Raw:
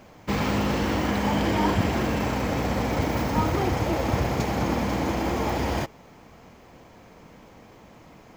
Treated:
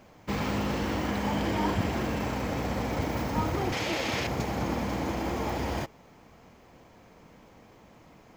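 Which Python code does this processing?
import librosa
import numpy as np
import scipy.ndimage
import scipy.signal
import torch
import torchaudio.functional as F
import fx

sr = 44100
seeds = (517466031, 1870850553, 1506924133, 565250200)

y = fx.weighting(x, sr, curve='D', at=(3.72, 4.27))
y = y * librosa.db_to_amplitude(-5.0)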